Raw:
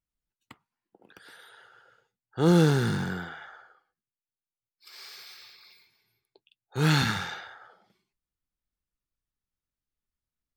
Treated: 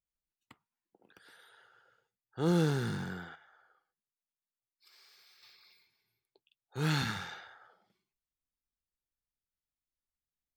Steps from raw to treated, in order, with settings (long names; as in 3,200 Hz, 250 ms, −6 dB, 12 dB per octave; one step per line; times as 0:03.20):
0:03.35–0:05.43: downward compressor 3 to 1, threshold −54 dBFS, peak gain reduction 9.5 dB
level −8 dB